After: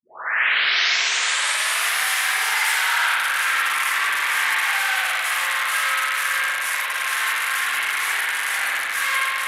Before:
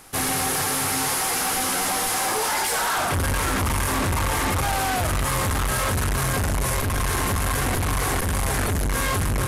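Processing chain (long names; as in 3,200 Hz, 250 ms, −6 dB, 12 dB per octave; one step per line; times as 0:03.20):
turntable start at the beginning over 1.89 s
high-pass with resonance 1,800 Hz, resonance Q 1.6
spring reverb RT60 2 s, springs 52 ms, chirp 35 ms, DRR −7 dB
level −1.5 dB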